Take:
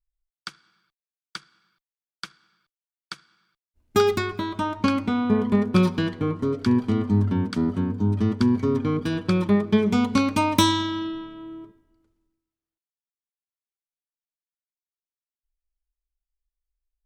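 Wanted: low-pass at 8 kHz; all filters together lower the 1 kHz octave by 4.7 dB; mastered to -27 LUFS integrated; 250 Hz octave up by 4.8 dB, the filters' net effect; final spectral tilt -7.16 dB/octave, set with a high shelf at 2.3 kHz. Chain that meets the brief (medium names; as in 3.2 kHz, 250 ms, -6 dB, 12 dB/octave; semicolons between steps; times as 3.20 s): low-pass 8 kHz; peaking EQ 250 Hz +6 dB; peaking EQ 1 kHz -5 dB; treble shelf 2.3 kHz -3.5 dB; trim -7.5 dB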